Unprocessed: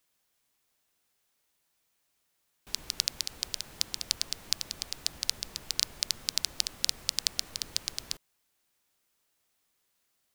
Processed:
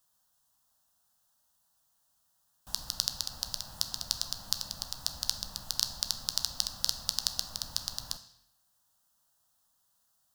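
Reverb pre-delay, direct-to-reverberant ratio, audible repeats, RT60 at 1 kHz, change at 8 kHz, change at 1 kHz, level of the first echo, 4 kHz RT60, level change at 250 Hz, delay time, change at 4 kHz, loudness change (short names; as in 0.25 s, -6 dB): 9 ms, 8.5 dB, none, 0.80 s, -1.5 dB, +3.0 dB, none, 0.75 s, -1.0 dB, none, -1.0 dB, -1.0 dB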